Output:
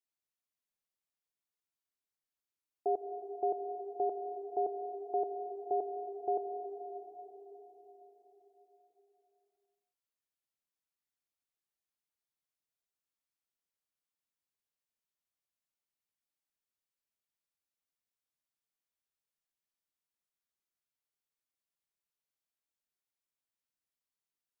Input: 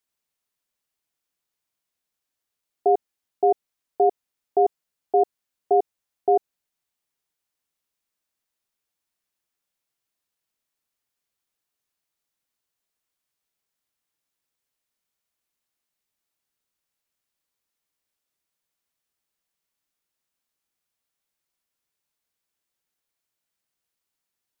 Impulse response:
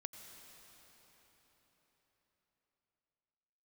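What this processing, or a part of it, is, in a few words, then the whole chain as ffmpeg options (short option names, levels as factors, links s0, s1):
cathedral: -filter_complex "[1:a]atrim=start_sample=2205[s0];[0:a][s0]afir=irnorm=-1:irlink=0,volume=0.376"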